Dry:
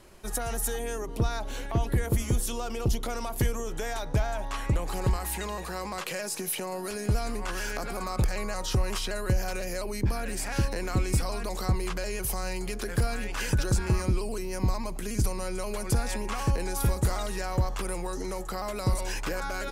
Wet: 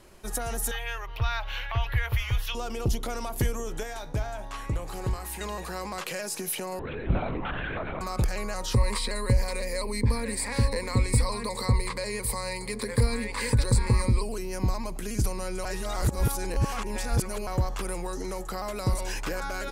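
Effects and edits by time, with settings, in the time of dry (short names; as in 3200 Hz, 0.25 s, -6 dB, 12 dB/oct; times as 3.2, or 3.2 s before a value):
0.71–2.55 EQ curve 120 Hz 0 dB, 200 Hz -29 dB, 490 Hz -10 dB, 970 Hz +3 dB, 2800 Hz +11 dB, 5600 Hz -5 dB, 8400 Hz -21 dB, 14000 Hz -1 dB
3.83–5.41 resonator 53 Hz, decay 0.29 s
6.79–8.01 LPC vocoder at 8 kHz whisper
8.73–14.23 ripple EQ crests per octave 0.96, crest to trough 14 dB
15.65–17.47 reverse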